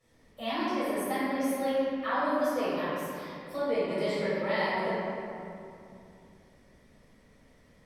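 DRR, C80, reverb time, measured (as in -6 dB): -13.5 dB, -2.0 dB, 2.7 s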